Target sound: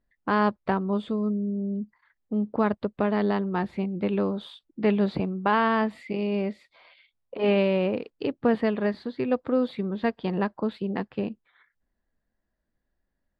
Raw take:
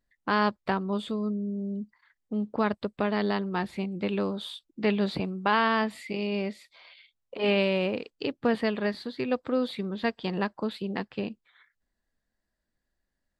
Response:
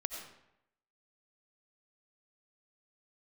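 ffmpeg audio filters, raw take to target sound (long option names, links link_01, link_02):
-af "lowpass=frequency=1300:poles=1,volume=3.5dB"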